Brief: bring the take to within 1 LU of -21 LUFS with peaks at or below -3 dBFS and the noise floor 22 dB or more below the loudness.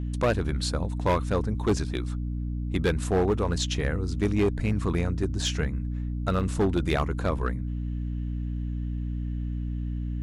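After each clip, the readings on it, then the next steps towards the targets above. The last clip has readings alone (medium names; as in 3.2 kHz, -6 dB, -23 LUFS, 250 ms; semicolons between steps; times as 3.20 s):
clipped samples 1.2%; clipping level -17.5 dBFS; hum 60 Hz; highest harmonic 300 Hz; hum level -28 dBFS; loudness -28.0 LUFS; peak level -17.5 dBFS; loudness target -21.0 LUFS
-> clip repair -17.5 dBFS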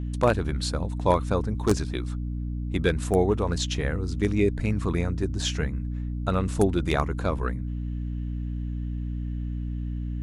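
clipped samples 0.0%; hum 60 Hz; highest harmonic 300 Hz; hum level -28 dBFS
-> de-hum 60 Hz, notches 5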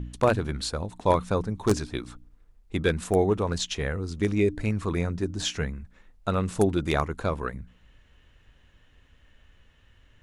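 hum not found; loudness -27.5 LUFS; peak level -7.5 dBFS; loudness target -21.0 LUFS
-> trim +6.5 dB; peak limiter -3 dBFS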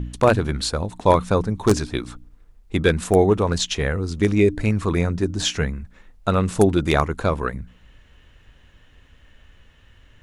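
loudness -21.0 LUFS; peak level -3.0 dBFS; noise floor -53 dBFS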